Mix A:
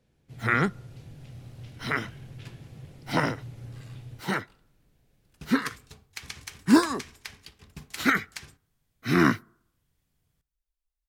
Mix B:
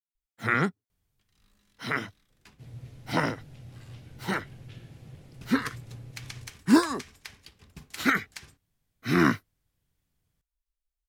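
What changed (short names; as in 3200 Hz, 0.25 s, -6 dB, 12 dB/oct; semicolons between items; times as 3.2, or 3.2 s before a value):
speech: entry +2.30 s; reverb: off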